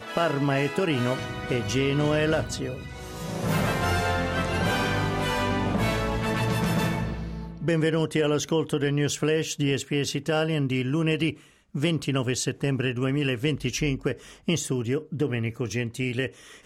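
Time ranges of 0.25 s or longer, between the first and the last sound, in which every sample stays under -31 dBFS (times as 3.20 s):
11.32–11.75 s
14.13–14.48 s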